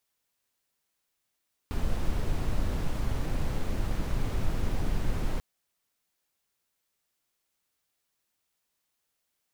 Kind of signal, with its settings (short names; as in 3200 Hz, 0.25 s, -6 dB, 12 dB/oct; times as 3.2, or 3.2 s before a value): noise brown, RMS -26.5 dBFS 3.69 s